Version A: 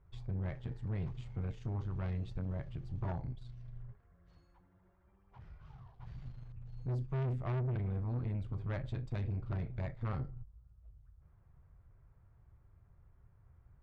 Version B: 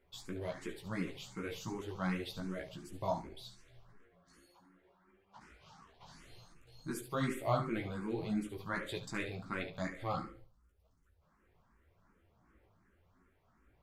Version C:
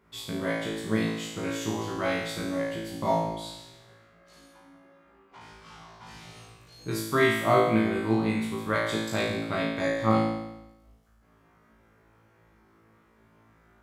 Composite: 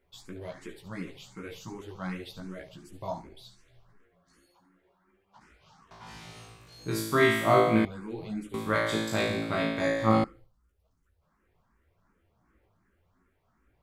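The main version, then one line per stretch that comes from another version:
B
5.91–7.85 from C
8.54–10.24 from C
not used: A

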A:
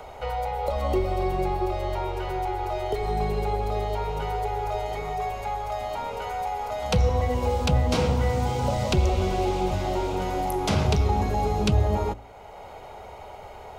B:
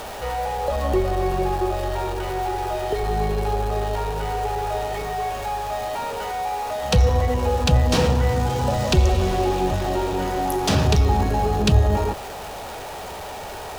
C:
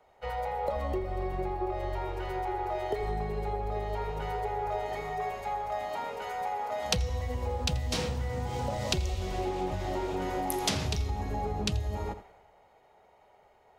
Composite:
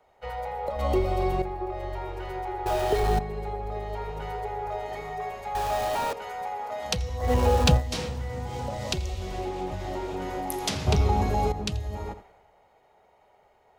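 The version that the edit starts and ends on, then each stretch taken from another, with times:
C
0.79–1.42 from A
2.66–3.19 from B
5.55–6.13 from B
7.25–7.77 from B, crossfade 0.16 s
10.87–11.52 from A

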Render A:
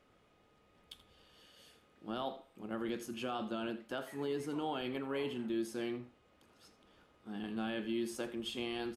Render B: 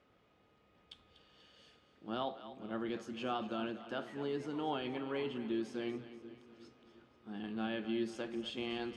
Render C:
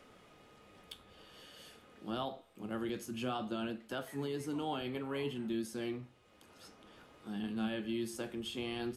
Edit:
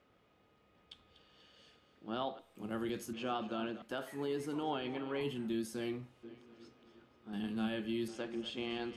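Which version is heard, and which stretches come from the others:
B
2.39–3.13 from C
3.82–4.63 from A
5.21–6.23 from C
7.33–8.08 from C

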